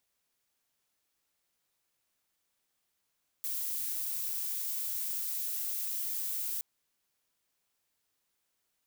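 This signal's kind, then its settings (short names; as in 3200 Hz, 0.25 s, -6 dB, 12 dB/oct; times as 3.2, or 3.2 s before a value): noise violet, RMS -35 dBFS 3.17 s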